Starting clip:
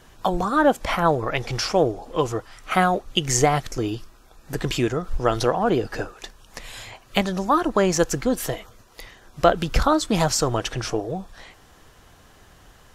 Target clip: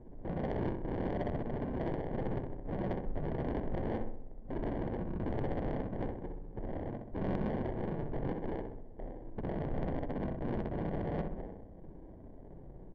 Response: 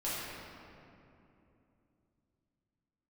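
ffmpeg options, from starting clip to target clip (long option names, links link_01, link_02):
-filter_complex "[0:a]lowshelf=frequency=340:gain=-2,alimiter=limit=-12.5dB:level=0:latency=1:release=114,acompressor=threshold=-27dB:ratio=8,aresample=8000,aresample=44100,aresample=11025,aeval=exprs='(mod(42.2*val(0)+1,2)-1)/42.2':channel_layout=same,aresample=44100,flanger=delay=2.4:depth=5:regen=51:speed=1.3:shape=triangular,acrusher=samples=34:mix=1:aa=0.000001,asplit=2[link_01][link_02];[link_02]aecho=0:1:64|128|192|256|320|384|448|512:0.631|0.366|0.212|0.123|0.0714|0.0414|0.024|0.0139[link_03];[link_01][link_03]amix=inputs=2:normalize=0,adynamicsmooth=sensitivity=2:basefreq=510,volume=6.5dB"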